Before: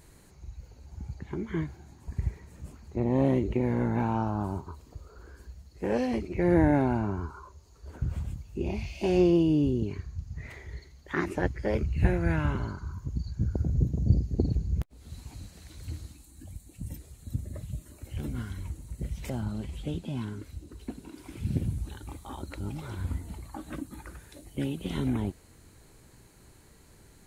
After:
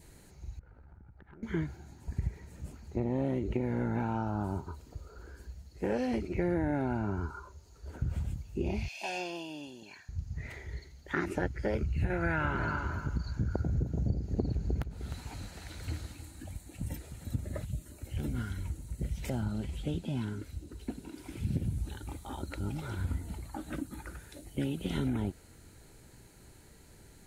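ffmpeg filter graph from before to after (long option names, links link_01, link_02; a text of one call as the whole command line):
ffmpeg -i in.wav -filter_complex "[0:a]asettb=1/sr,asplit=3[link_01][link_02][link_03];[link_01]atrim=end=0.594[link_04];[link_02]atrim=start=0.59:end=1.43,asetpts=PTS-STARTPTS,afade=type=in:duration=0.004:curve=qsin,afade=type=out:start_time=0.836:duration=0.004:curve=qsin,lowpass=frequency=1400:width_type=q:width=4.2,acompressor=threshold=-46dB:ratio=12:attack=3.2:release=140:knee=1:detection=peak,aeval=exprs='(tanh(100*val(0)+0.75)-tanh(0.75))/100':channel_layout=same[link_05];[link_03]atrim=start=1.426[link_06];[link_04][link_05]acrossfade=duration=0.004:curve1=hsin:curve2=qsin[link_07];[link_07][link_06]acrossfade=duration=0.004:curve1=qsin:curve2=hsin,asettb=1/sr,asplit=3[link_08][link_09][link_10];[link_08]atrim=end=8.884[link_11];[link_09]atrim=start=8.88:end=10.09,asetpts=PTS-STARTPTS,afade=type=in:duration=0.004:curve=qsin,afade=type=out:start_time=1.206:duration=0.004:curve=qsin,highpass=830,aecho=1:1:1.2:0.66,atrim=end_sample=53361[link_12];[link_10]atrim=start=10.086[link_13];[link_11][link_12]acrossfade=duration=0.004:curve1=hsin:curve2=qsin[link_14];[link_14][link_13]acrossfade=duration=0.004:curve1=qsin:curve2=hsin,asettb=1/sr,asplit=3[link_15][link_16][link_17];[link_15]atrim=end=12.104[link_18];[link_16]atrim=start=12.1:end=17.65,asetpts=PTS-STARTPTS,afade=type=in:duration=0.004:curve=qsin,afade=type=out:start_time=5.546:duration=0.004:curve=qsin,equalizer=frequency=1200:width_type=o:width=2.9:gain=10,aecho=1:1:306|612|918:0.251|0.0527|0.0111,atrim=end_sample=244755[link_19];[link_17]atrim=start=17.646[link_20];[link_18][link_19]acrossfade=duration=0.004:curve1=hsin:curve2=qsin[link_21];[link_21][link_20]acrossfade=duration=0.004:curve1=qsin:curve2=hsin,bandreject=frequency=1100:width=6.8,adynamicequalizer=threshold=0.00126:dfrequency=1400:dqfactor=6.9:tfrequency=1400:tqfactor=6.9:attack=5:release=100:ratio=0.375:range=3:mode=boostabove:tftype=bell,acompressor=threshold=-27dB:ratio=6" out.wav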